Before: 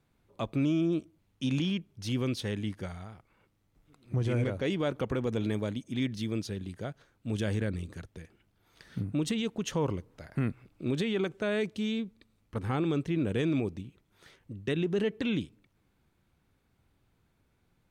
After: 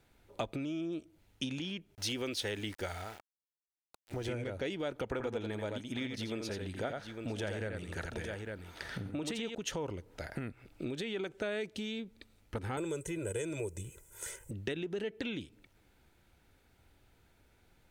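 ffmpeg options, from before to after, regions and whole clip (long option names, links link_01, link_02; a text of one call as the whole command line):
ffmpeg -i in.wav -filter_complex "[0:a]asettb=1/sr,asplit=3[link_01][link_02][link_03];[link_01]atrim=end=1.954[link_04];[link_02]atrim=start=1.95:end=4.29,asetpts=PTS-STARTPTS,afade=type=in:duration=0.004:curve=qsin,afade=type=out:start_time=2.336:duration=0.004:curve=qsin,equalizer=frequency=150:width=1.2:gain=-12.5,aeval=exprs='val(0)*gte(abs(val(0)),0.00211)':channel_layout=same[link_05];[link_03]atrim=start=4.286[link_06];[link_04][link_05]acrossfade=duration=0.004:curve1=hsin:curve2=qsin[link_07];[link_07][link_06]acrossfade=duration=0.004:curve1=qsin:curve2=hsin,asettb=1/sr,asplit=3[link_08][link_09][link_10];[link_08]atrim=end=5.114[link_11];[link_09]atrim=start=5.11:end=9.55,asetpts=PTS-STARTPTS,afade=type=in:duration=0.004:curve=qsin,afade=type=out:start_time=4.436:duration=0.004:curve=qsin,equalizer=frequency=1000:width=0.57:gain=7.5,aecho=1:1:85|855:0.501|0.141,atrim=end_sample=195804[link_12];[link_10]atrim=start=9.546[link_13];[link_11][link_12]acrossfade=duration=0.004:curve1=hsin:curve2=qsin[link_14];[link_14][link_13]acrossfade=duration=0.004:curve1=qsin:curve2=hsin,asettb=1/sr,asplit=3[link_15][link_16][link_17];[link_15]atrim=end=12.774[link_18];[link_16]atrim=start=12.77:end=14.51,asetpts=PTS-STARTPTS,afade=type=in:duration=0.004:curve=qsin,afade=type=out:start_time=1.736:duration=0.004:curve=qsin,highshelf=frequency=5800:width_type=q:width=3:gain=12,aecho=1:1:2:0.98,atrim=end_sample=76734[link_19];[link_17]atrim=start=14.506[link_20];[link_18][link_19]acrossfade=duration=0.004:curve1=hsin:curve2=qsin[link_21];[link_21][link_20]acrossfade=duration=0.004:curve1=qsin:curve2=hsin,bandreject=frequency=1100:width=5.7,acompressor=threshold=-38dB:ratio=12,equalizer=frequency=160:width_type=o:width=1.6:gain=-8.5,volume=7.5dB" out.wav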